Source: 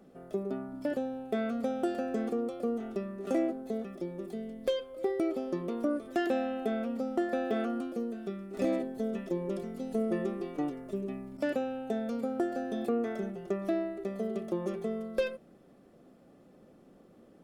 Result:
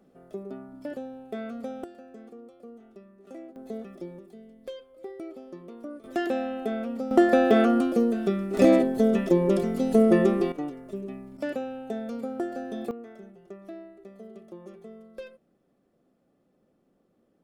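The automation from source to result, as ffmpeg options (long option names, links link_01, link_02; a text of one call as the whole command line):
ffmpeg -i in.wav -af "asetnsamples=nb_out_samples=441:pad=0,asendcmd='1.84 volume volume -14dB;3.56 volume volume -1.5dB;4.19 volume volume -9dB;6.04 volume volume 2dB;7.11 volume volume 12dB;10.52 volume volume 0dB;12.91 volume volume -11dB',volume=-3.5dB" out.wav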